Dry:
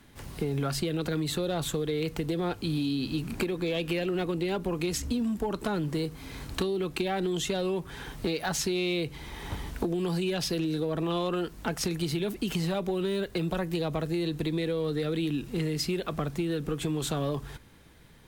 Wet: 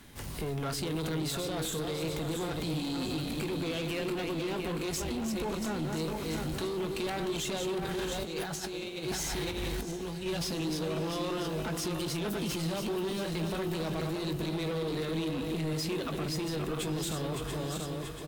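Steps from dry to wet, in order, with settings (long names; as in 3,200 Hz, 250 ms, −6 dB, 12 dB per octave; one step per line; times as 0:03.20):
feedback delay that plays each chunk backwards 342 ms, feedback 63%, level −6 dB
high-shelf EQ 3,800 Hz +4.5 dB
0:07.80–0:10.26: compressor whose output falls as the input rises −33 dBFS, ratio −0.5
brickwall limiter −23.5 dBFS, peak gain reduction 9.5 dB
soft clipping −32 dBFS, distortion −12 dB
double-tracking delay 19 ms −12 dB
feedback delay with all-pass diffusion 656 ms, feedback 64%, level −15.5 dB
level +2 dB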